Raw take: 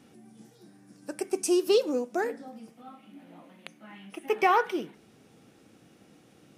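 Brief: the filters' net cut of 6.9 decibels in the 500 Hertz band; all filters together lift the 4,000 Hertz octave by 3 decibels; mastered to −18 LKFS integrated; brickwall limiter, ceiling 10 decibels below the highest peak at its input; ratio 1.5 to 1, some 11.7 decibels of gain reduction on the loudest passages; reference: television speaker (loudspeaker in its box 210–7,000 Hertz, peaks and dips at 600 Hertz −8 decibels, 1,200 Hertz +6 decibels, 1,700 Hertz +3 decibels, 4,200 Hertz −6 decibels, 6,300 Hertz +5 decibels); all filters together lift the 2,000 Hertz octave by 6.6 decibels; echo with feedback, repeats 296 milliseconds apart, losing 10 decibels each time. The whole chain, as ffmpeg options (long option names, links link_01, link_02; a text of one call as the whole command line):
ffmpeg -i in.wav -af "equalizer=frequency=500:width_type=o:gain=-8.5,equalizer=frequency=2000:width_type=o:gain=6,equalizer=frequency=4000:width_type=o:gain=3.5,acompressor=threshold=-52dB:ratio=1.5,alimiter=level_in=8.5dB:limit=-24dB:level=0:latency=1,volume=-8.5dB,highpass=frequency=210:width=0.5412,highpass=frequency=210:width=1.3066,equalizer=frequency=600:width_type=q:width=4:gain=-8,equalizer=frequency=1200:width_type=q:width=4:gain=6,equalizer=frequency=1700:width_type=q:width=4:gain=3,equalizer=frequency=4200:width_type=q:width=4:gain=-6,equalizer=frequency=6300:width_type=q:width=4:gain=5,lowpass=frequency=7000:width=0.5412,lowpass=frequency=7000:width=1.3066,aecho=1:1:296|592|888|1184:0.316|0.101|0.0324|0.0104,volume=27dB" out.wav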